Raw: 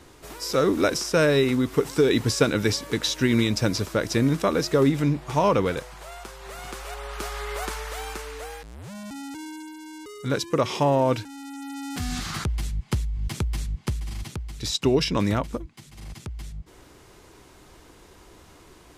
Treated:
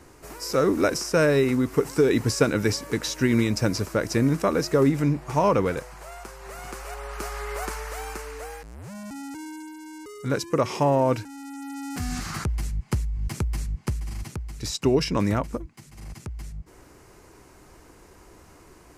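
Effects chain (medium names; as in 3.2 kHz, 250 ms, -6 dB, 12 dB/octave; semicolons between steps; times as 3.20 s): peaking EQ 3.5 kHz -10 dB 0.53 oct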